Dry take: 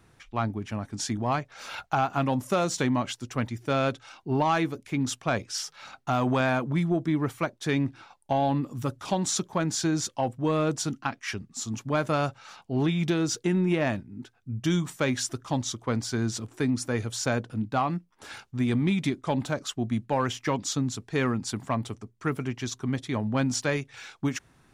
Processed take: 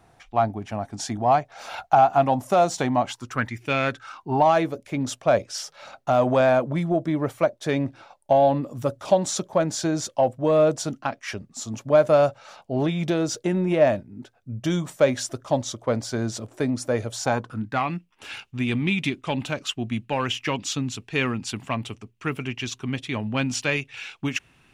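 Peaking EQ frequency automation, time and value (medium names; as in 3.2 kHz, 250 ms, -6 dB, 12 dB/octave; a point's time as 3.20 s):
peaking EQ +14 dB 0.58 oct
3.02 s 720 Hz
3.67 s 2.7 kHz
4.54 s 590 Hz
17.12 s 590 Hz
17.94 s 2.7 kHz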